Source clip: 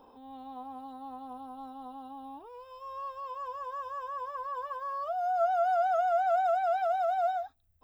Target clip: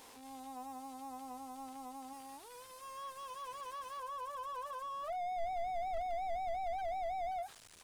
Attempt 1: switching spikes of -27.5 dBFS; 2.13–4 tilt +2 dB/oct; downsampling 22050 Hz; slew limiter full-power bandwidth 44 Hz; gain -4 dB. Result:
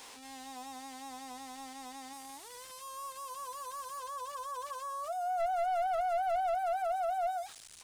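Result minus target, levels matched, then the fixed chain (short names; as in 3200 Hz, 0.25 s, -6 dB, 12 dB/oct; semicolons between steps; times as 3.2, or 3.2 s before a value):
slew limiter: distortion -15 dB
switching spikes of -27.5 dBFS; 2.13–4 tilt +2 dB/oct; downsampling 22050 Hz; slew limiter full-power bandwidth 15.5 Hz; gain -4 dB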